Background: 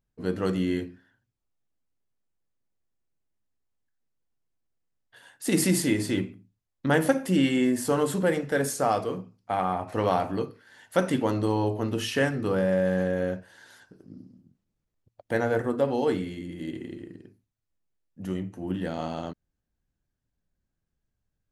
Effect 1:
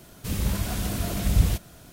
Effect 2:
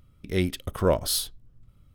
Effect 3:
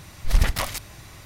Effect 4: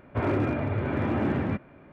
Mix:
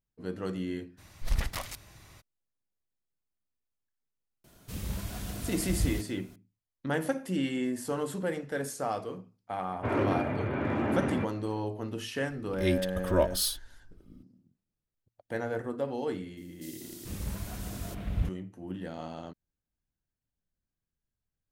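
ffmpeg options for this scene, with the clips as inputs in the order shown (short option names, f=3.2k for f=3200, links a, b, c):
-filter_complex "[1:a]asplit=2[a][b];[0:a]volume=-8dB[c];[4:a]lowshelf=f=110:g=-8[d];[2:a]aecho=1:1:3.3:0.87[e];[b]acrossover=split=3400[f][g];[f]adelay=440[h];[h][g]amix=inputs=2:normalize=0[i];[3:a]atrim=end=1.25,asetpts=PTS-STARTPTS,volume=-10dB,afade=t=in:d=0.02,afade=t=out:st=1.23:d=0.02,adelay=970[j];[a]atrim=end=1.92,asetpts=PTS-STARTPTS,volume=-9.5dB,afade=t=in:d=0.004:c=hsin,afade=t=out:st=1.916:d=0.004:c=hsin,adelay=4440[k];[d]atrim=end=1.92,asetpts=PTS-STARTPTS,volume=-1.5dB,afade=t=in:d=0.004:c=hsin,afade=t=out:st=1.916:d=0.004:c=hsin,adelay=9680[l];[e]atrim=end=1.94,asetpts=PTS-STARTPTS,volume=-5.5dB,afade=t=in:d=0.004:c=hsin,afade=t=out:st=1.936:d=0.004:c=hsin,adelay=12290[m];[i]atrim=end=1.92,asetpts=PTS-STARTPTS,volume=-10dB,afade=t=in:d=0.004:c=hsin,afade=t=out:st=1.916:d=0.004:c=hsin,adelay=16370[n];[c][j][k][l][m][n]amix=inputs=6:normalize=0"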